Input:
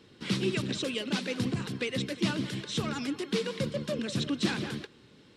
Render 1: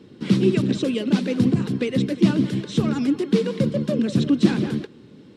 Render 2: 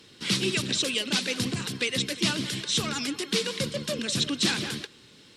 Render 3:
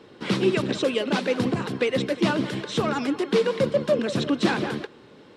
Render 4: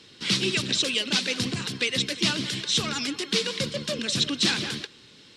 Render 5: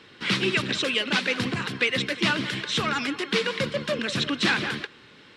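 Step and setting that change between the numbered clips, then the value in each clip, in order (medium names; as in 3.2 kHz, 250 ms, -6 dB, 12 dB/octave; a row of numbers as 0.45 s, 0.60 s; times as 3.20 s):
peaking EQ, frequency: 230 Hz, 14 kHz, 690 Hz, 5.2 kHz, 1.8 kHz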